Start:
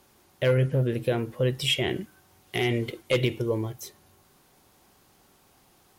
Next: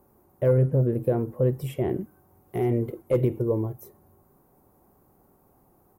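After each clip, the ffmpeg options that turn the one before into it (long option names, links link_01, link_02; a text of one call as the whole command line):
ffmpeg -i in.wav -af "firequalizer=gain_entry='entry(410,0);entry(1100,-5);entry(1600,-14);entry(3200,-28);entry(14000,-2)':delay=0.05:min_phase=1,volume=2.5dB" out.wav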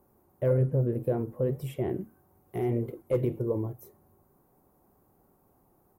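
ffmpeg -i in.wav -af "flanger=delay=4.3:depth=7.8:regen=-76:speed=1.7:shape=triangular" out.wav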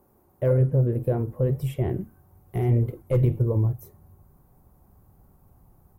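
ffmpeg -i in.wav -af "asubboost=boost=6.5:cutoff=130,volume=3.5dB" out.wav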